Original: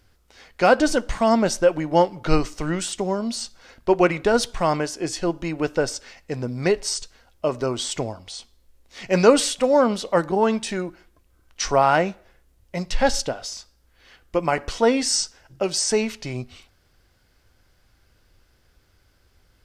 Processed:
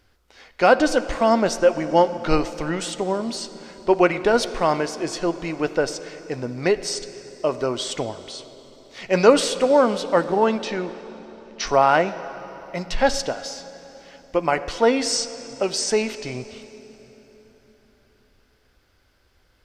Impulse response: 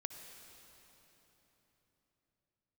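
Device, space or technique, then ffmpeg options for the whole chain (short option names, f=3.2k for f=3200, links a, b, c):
filtered reverb send: -filter_complex "[0:a]asettb=1/sr,asplit=3[a][b][c];[a]atrim=end=10.624[d];[b]atrim=start=10.62:end=11.67,asetpts=PTS-STARTPTS,afade=t=in:d=0.004:c=qsin,afade=t=out:st=1.046:d=0.004:c=qsin,lowpass=f=6k:w=0.5412,lowpass=f=6k:w=1.3066[e];[c]atrim=start=11.666[f];[d][e]acrossfade=d=0.004:c1=hsin:c2=qsin[g];[g][f]acrossfade=d=0.004:c1=qsin:c2=hsin,asplit=2[h][i];[i]highpass=210,lowpass=6.2k[j];[1:a]atrim=start_sample=2205[k];[j][k]afir=irnorm=-1:irlink=0,volume=-0.5dB[l];[h][l]amix=inputs=2:normalize=0,volume=-3dB"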